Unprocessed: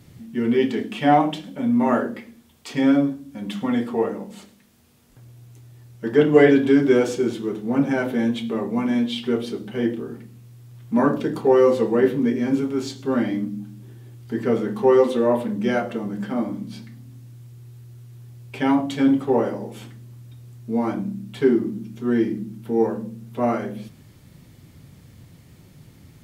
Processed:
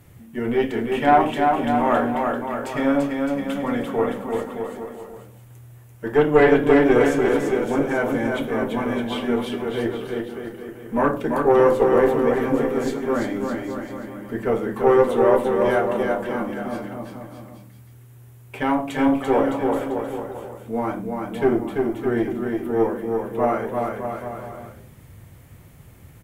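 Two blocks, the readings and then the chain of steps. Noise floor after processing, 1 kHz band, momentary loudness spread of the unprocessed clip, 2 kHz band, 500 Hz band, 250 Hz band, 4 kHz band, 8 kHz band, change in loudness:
-46 dBFS, +4.5 dB, 16 LU, +3.5 dB, +2.0 dB, -2.0 dB, -1.5 dB, n/a, 0.0 dB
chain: bell 4600 Hz -12.5 dB 1.3 oct; tube stage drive 8 dB, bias 0.45; bell 210 Hz -10 dB 1.7 oct; bouncing-ball echo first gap 0.34 s, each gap 0.8×, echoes 5; gain +6 dB

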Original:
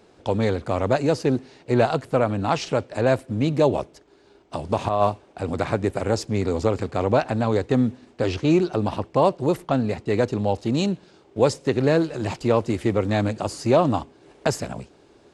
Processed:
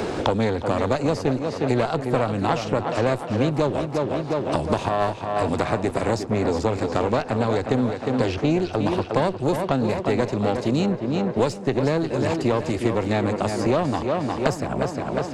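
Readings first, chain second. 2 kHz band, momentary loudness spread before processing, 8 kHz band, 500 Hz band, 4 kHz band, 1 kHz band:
+1.5 dB, 7 LU, -1.0 dB, -0.5 dB, +1.0 dB, +1.0 dB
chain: one diode to ground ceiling -19.5 dBFS; tape echo 0.357 s, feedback 61%, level -7 dB, low-pass 3300 Hz; three-band squash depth 100%

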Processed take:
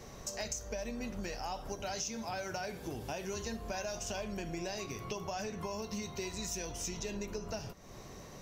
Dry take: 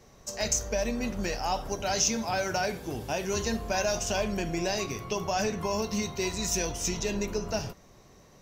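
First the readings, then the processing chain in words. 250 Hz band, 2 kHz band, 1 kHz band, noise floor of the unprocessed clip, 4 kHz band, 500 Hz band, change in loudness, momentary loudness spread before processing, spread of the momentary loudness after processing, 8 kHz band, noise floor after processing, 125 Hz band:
-9.0 dB, -10.0 dB, -9.5 dB, -56 dBFS, -10.0 dB, -9.5 dB, -10.0 dB, 6 LU, 4 LU, -10.5 dB, -50 dBFS, -8.5 dB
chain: compressor 4:1, threshold -46 dBFS, peak gain reduction 20 dB; gain +6 dB

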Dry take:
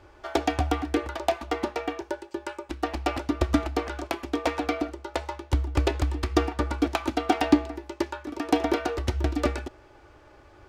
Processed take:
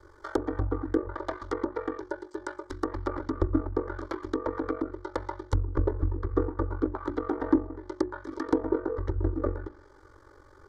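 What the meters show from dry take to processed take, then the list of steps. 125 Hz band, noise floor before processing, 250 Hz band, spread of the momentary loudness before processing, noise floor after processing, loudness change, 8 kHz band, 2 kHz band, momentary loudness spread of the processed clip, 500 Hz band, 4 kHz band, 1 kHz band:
-2.0 dB, -53 dBFS, -3.0 dB, 9 LU, -55 dBFS, -3.5 dB, under -10 dB, -8.5 dB, 9 LU, -2.0 dB, -17.0 dB, -7.5 dB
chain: ring modulator 23 Hz; notches 60/120/180/240/300/360 Hz; in parallel at -6 dB: wrapped overs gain 10 dB; on the sum: fixed phaser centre 710 Hz, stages 6; treble ducked by the level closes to 840 Hz, closed at -25 dBFS

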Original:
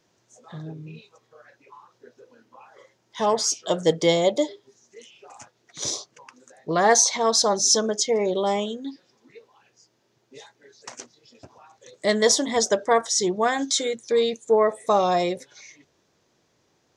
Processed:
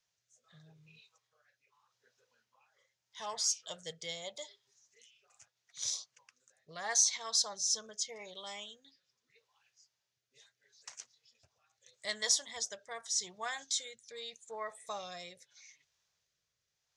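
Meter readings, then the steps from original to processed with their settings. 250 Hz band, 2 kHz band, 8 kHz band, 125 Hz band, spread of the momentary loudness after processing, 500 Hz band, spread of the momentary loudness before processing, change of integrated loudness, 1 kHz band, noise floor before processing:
-31.0 dB, -13.5 dB, -9.5 dB, under -25 dB, 19 LU, -26.0 dB, 17 LU, -13.5 dB, -20.5 dB, -68 dBFS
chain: passive tone stack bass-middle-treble 10-0-10; rotary speaker horn 0.8 Hz; gain -6.5 dB

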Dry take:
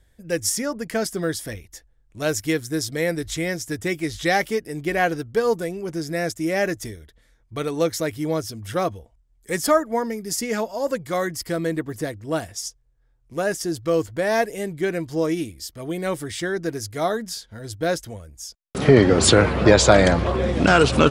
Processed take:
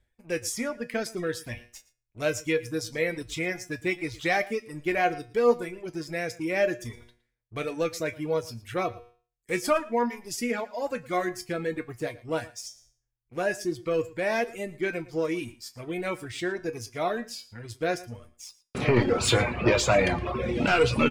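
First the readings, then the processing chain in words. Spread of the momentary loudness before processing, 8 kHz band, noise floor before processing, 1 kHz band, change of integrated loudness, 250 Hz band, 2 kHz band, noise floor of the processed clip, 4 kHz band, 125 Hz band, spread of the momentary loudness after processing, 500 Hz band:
15 LU, -9.0 dB, -61 dBFS, -5.5 dB, -6.0 dB, -7.5 dB, -4.5 dB, -79 dBFS, -7.0 dB, -8.0 dB, 14 LU, -6.0 dB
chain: sample leveller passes 2; resonator 120 Hz, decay 0.46 s, harmonics all, mix 80%; reverse; upward compressor, threshold -32 dBFS; reverse; high shelf 6400 Hz -7.5 dB; reverb removal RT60 0.97 s; bell 2400 Hz +9 dB 0.33 oct; on a send: echo 0.114 s -20 dB; on the sum: gain -2 dB

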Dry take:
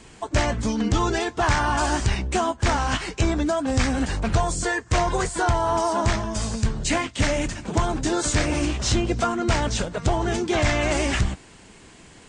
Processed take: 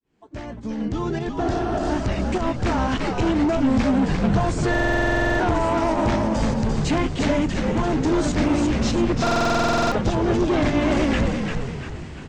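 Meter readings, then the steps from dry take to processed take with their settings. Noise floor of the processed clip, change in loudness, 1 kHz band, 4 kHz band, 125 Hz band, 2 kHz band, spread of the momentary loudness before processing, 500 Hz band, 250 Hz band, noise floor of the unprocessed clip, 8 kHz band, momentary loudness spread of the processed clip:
-35 dBFS, +2.0 dB, 0.0 dB, -2.5 dB, +0.5 dB, 0.0 dB, 4 LU, +2.5 dB, +5.5 dB, -48 dBFS, -8.0 dB, 7 LU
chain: opening faded in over 3.54 s; spectral repair 1.44–1.88, 240–3200 Hz before; bell 270 Hz +9 dB 1.9 oct; in parallel at 0 dB: compressor, threshold -25 dBFS, peak gain reduction 12.5 dB; on the sum: hard clip -14.5 dBFS, distortion -11 dB; pump 101 bpm, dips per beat 1, -8 dB, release 0.126 s; air absorption 100 m; on a send: frequency-shifting echo 0.346 s, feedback 48%, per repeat -69 Hz, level -4.5 dB; on the sum: stuck buffer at 4.7/9.22, samples 2048, times 14; gain -3 dB

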